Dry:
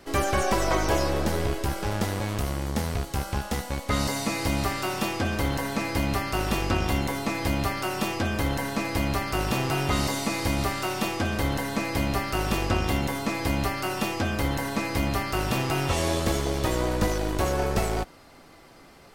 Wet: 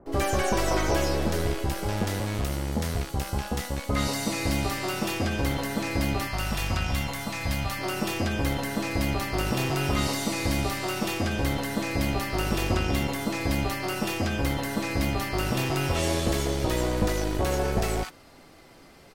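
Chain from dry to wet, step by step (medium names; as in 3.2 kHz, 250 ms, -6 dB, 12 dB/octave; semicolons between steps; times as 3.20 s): 6.27–7.79 s: peaking EQ 360 Hz -13 dB 0.95 oct; bands offset in time lows, highs 60 ms, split 1.1 kHz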